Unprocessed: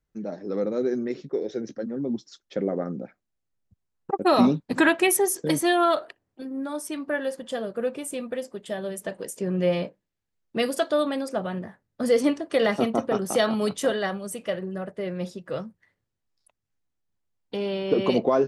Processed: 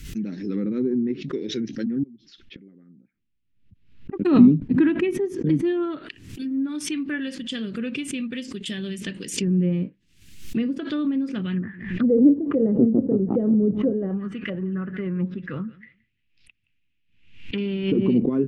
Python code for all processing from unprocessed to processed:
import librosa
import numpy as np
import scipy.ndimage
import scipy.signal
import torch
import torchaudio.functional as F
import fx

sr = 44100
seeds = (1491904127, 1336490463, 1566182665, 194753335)

y = fx.chain(x, sr, fx.gate_flip(shuts_db=-29.0, range_db=-25),
    fx.air_absorb(metres=360.0), at=(2.03, 4.25))
y = fx.chain(y, sr, fx.echo_feedback(ms=171, feedback_pct=17, wet_db=-22),
    fx.envelope_lowpass(base_hz=550.0, top_hz=2600.0, q=3.3, full_db=-21.5, direction='down'), at=(11.56, 17.58))
y = fx.curve_eq(y, sr, hz=(270.0, 390.0, 650.0, 2700.0, 4100.0), db=(0, -8, -28, 5, 1))
y = fx.env_lowpass_down(y, sr, base_hz=760.0, full_db=-26.5)
y = fx.pre_swell(y, sr, db_per_s=85.0)
y = y * 10.0 ** (7.0 / 20.0)